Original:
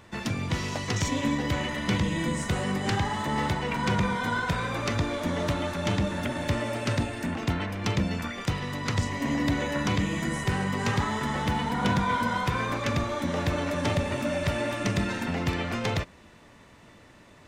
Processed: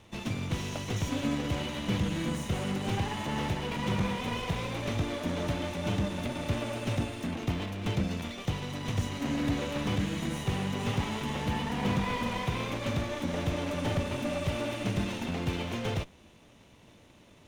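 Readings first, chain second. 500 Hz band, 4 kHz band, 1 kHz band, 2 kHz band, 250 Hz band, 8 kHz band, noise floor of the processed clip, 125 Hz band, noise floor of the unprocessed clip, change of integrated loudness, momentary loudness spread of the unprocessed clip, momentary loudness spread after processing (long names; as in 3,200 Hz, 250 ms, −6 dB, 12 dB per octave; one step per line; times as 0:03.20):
−4.0 dB, −3.0 dB, −7.0 dB, −7.0 dB, −3.0 dB, −5.0 dB, −57 dBFS, −3.0 dB, −53 dBFS, −4.0 dB, 4 LU, 3 LU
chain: lower of the sound and its delayed copy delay 0.32 ms
slew-rate limiting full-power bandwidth 69 Hz
level −3 dB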